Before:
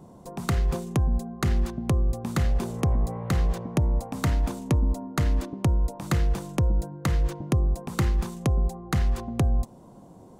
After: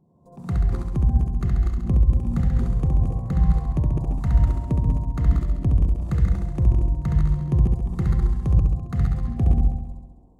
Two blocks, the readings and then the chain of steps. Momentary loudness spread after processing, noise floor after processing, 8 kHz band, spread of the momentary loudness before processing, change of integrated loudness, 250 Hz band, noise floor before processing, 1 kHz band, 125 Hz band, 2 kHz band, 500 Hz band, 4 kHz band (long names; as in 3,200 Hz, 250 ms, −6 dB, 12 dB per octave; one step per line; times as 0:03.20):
4 LU, −49 dBFS, below −10 dB, 2 LU, +4.0 dB, +2.0 dB, −49 dBFS, −4.0 dB, +5.0 dB, −8.5 dB, −4.5 dB, below −10 dB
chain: delay that plays each chunk backwards 155 ms, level −4 dB
flutter between parallel walls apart 11.6 metres, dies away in 1.4 s
every bin expanded away from the loudest bin 1.5 to 1
level +1.5 dB